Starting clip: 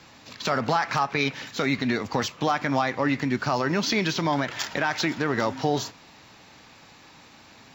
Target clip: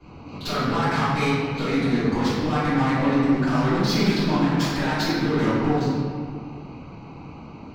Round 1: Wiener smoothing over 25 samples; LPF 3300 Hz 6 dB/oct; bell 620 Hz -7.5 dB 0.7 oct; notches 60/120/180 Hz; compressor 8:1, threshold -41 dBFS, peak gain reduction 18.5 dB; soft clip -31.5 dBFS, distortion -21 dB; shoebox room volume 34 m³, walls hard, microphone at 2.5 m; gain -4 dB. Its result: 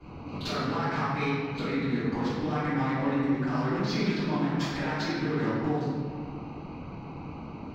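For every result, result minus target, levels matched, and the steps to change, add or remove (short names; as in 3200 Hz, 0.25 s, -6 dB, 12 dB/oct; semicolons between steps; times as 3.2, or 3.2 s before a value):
compressor: peak gain reduction +9.5 dB; 8000 Hz band -3.5 dB
change: compressor 8:1, threshold -29.5 dBFS, peak gain reduction 8.5 dB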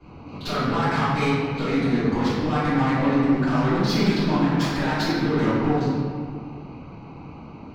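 8000 Hz band -3.0 dB
change: LPF 10000 Hz 6 dB/oct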